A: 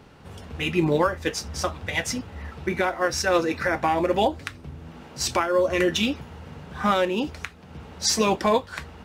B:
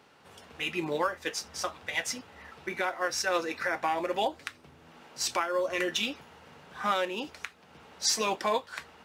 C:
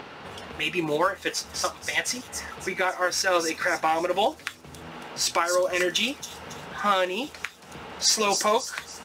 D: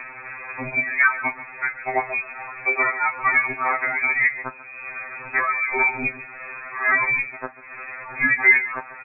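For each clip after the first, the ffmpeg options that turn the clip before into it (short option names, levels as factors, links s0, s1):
-af "highpass=f=680:p=1,volume=0.631"
-filter_complex "[0:a]acrossover=split=4800[s0][s1];[s0]acompressor=mode=upward:threshold=0.0158:ratio=2.5[s2];[s1]aecho=1:1:276|552|828|1104|1380|1656:0.708|0.304|0.131|0.0563|0.0242|0.0104[s3];[s2][s3]amix=inputs=2:normalize=0,volume=1.88"
-filter_complex "[0:a]asplit=2[s0][s1];[s1]adelay=140,highpass=300,lowpass=3400,asoftclip=type=hard:threshold=0.119,volume=0.224[s2];[s0][s2]amix=inputs=2:normalize=0,lowpass=f=2300:t=q:w=0.5098,lowpass=f=2300:t=q:w=0.6013,lowpass=f=2300:t=q:w=0.9,lowpass=f=2300:t=q:w=2.563,afreqshift=-2700,afftfilt=real='re*2.45*eq(mod(b,6),0)':imag='im*2.45*eq(mod(b,6),0)':win_size=2048:overlap=0.75,volume=2.51"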